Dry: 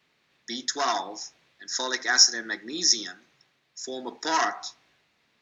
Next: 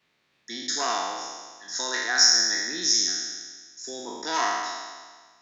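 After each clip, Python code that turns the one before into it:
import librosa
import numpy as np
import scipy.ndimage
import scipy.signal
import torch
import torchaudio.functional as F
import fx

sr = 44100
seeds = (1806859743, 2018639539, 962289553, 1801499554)

y = fx.spec_trails(x, sr, decay_s=1.53)
y = y * librosa.db_to_amplitude(-4.5)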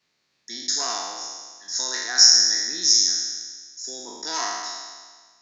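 y = fx.band_shelf(x, sr, hz=5500.0, db=9.0, octaves=1.0)
y = y * librosa.db_to_amplitude(-4.0)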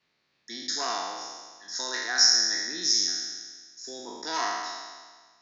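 y = scipy.signal.sosfilt(scipy.signal.butter(2, 4100.0, 'lowpass', fs=sr, output='sos'), x)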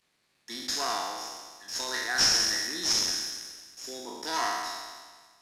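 y = fx.cvsd(x, sr, bps=64000)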